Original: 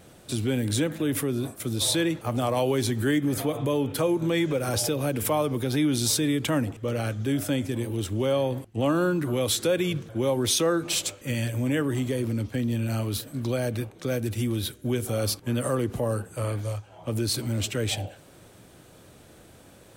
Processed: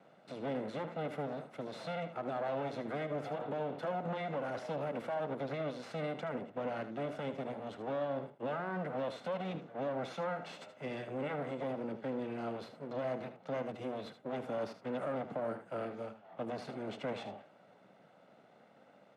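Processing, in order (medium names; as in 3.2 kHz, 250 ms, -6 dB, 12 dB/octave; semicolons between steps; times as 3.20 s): comb filter that takes the minimum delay 1.5 ms; speed mistake 24 fps film run at 25 fps; high-pass 190 Hz 24 dB/octave; peak limiter -22.5 dBFS, peak gain reduction 9.5 dB; Bessel low-pass 1.7 kHz, order 2; delay 77 ms -11.5 dB; trim -5.5 dB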